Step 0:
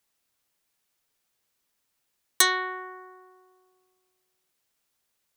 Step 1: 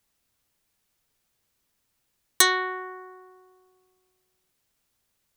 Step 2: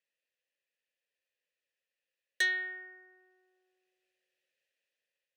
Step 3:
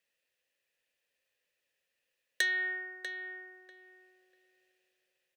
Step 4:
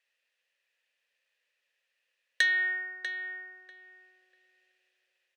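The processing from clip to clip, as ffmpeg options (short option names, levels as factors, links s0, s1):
-af "lowshelf=f=200:g=11,volume=1.19"
-filter_complex "[0:a]dynaudnorm=f=510:g=5:m=2.37,asplit=3[s0][s1][s2];[s0]bandpass=f=530:t=q:w=8,volume=1[s3];[s1]bandpass=f=1840:t=q:w=8,volume=0.501[s4];[s2]bandpass=f=2480:t=q:w=8,volume=0.355[s5];[s3][s4][s5]amix=inputs=3:normalize=0,tiltshelf=f=1200:g=-6.5"
-filter_complex "[0:a]acompressor=threshold=0.02:ratio=6,asplit=2[s0][s1];[s1]adelay=643,lowpass=f=2500:p=1,volume=0.422,asplit=2[s2][s3];[s3]adelay=643,lowpass=f=2500:p=1,volume=0.19,asplit=2[s4][s5];[s5]adelay=643,lowpass=f=2500:p=1,volume=0.19[s6];[s0][s2][s4][s6]amix=inputs=4:normalize=0,volume=2.11"
-af "bandpass=f=2100:t=q:w=0.55:csg=0,volume=1.78"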